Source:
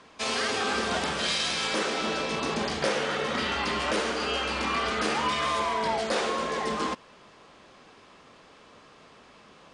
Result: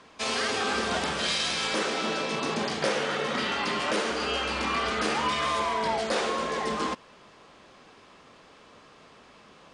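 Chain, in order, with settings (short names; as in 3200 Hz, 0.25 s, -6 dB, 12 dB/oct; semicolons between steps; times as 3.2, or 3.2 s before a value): 2–4.11 HPF 100 Hz 24 dB/oct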